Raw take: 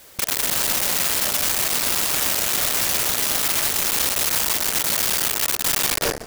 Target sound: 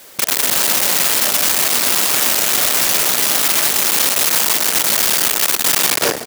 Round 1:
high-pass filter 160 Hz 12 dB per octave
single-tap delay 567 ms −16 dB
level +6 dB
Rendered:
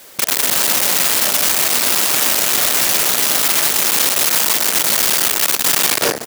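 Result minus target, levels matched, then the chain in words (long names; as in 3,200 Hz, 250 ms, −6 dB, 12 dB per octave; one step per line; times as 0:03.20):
echo 233 ms late
high-pass filter 160 Hz 12 dB per octave
single-tap delay 334 ms −16 dB
level +6 dB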